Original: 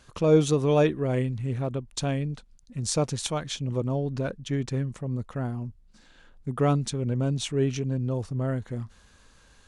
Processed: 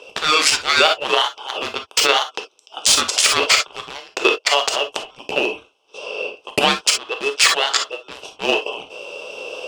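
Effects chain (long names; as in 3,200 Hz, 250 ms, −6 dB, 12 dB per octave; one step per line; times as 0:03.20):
adaptive Wiener filter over 15 samples
camcorder AGC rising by 5.6 dB per second
Chebyshev high-pass with heavy ripple 1,500 Hz, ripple 3 dB
ring modulation 1,100 Hz
low-pass filter 3,300 Hz 6 dB per octave
in parallel at −9 dB: wave folding −32.5 dBFS
on the sum: de-essing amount 80%
on a send at −5.5 dB: convolution reverb, pre-delay 3 ms
on the sum: boost into a limiter +33.5 dB
level −1 dB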